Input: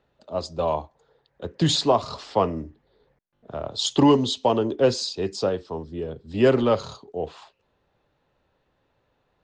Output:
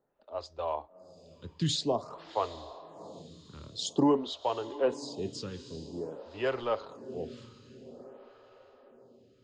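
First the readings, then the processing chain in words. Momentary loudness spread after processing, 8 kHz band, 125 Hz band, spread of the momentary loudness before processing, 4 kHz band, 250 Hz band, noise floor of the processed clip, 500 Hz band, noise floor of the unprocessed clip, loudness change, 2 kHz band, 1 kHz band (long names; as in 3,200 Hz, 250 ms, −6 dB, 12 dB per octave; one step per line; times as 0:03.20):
21 LU, −9.0 dB, −10.5 dB, 16 LU, −10.0 dB, −9.5 dB, −62 dBFS, −10.0 dB, −71 dBFS, −10.0 dB, −8.5 dB, −9.0 dB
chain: on a send: feedback delay with all-pass diffusion 735 ms, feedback 50%, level −15 dB
on the sum: phaser with staggered stages 0.5 Hz
level −7 dB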